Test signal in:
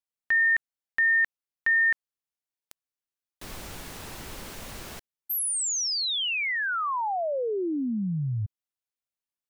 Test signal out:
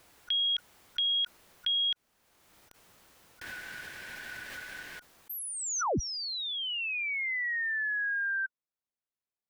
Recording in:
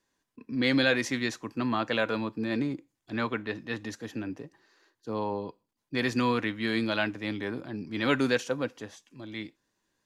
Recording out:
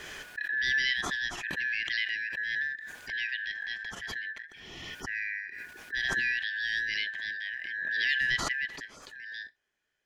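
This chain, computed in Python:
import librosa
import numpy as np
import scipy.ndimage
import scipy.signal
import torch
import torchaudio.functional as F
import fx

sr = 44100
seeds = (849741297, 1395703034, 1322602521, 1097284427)

y = fx.band_shuffle(x, sr, order='4123')
y = fx.high_shelf(y, sr, hz=2500.0, db=-10.5)
y = fx.pre_swell(y, sr, db_per_s=27.0)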